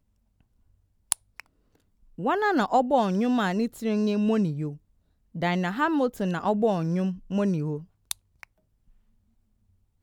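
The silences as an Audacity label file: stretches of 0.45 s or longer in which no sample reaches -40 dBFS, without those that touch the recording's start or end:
1.400000	2.180000	silence
4.760000	5.350000	silence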